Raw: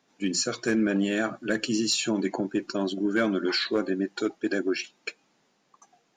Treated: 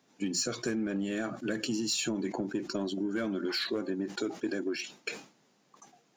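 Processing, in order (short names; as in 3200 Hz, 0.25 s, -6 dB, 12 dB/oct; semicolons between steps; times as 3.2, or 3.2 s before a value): HPF 46 Hz; in parallel at -7 dB: soft clip -28 dBFS, distortion -8 dB; on the sum: low shelf 480 Hz +5.5 dB; compressor, threshold -24 dBFS, peak gain reduction 9 dB; high shelf 5600 Hz +6 dB; sustainer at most 140 dB/s; gain -5.5 dB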